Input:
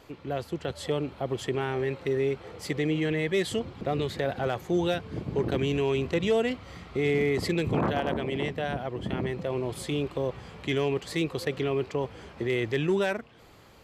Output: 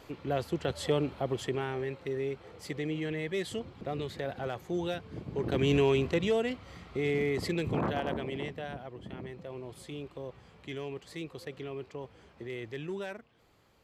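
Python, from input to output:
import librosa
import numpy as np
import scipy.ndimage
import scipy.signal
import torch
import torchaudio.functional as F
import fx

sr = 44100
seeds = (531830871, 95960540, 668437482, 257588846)

y = fx.gain(x, sr, db=fx.line((1.04, 0.5), (1.97, -7.0), (5.34, -7.0), (5.74, 2.5), (6.41, -4.5), (8.14, -4.5), (9.05, -12.0)))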